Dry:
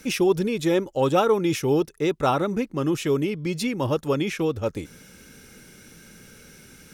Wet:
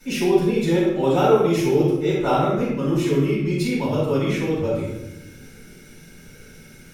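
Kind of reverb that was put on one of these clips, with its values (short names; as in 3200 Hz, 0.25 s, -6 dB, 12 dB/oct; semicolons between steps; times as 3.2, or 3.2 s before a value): shoebox room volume 320 m³, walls mixed, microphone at 7.2 m; gain -14 dB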